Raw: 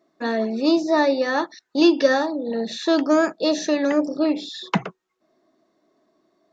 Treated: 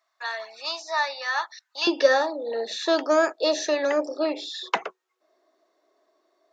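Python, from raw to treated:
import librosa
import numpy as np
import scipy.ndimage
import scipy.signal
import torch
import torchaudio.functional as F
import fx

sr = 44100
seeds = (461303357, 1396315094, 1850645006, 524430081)

y = fx.highpass(x, sr, hz=fx.steps((0.0, 900.0), (1.87, 400.0)), slope=24)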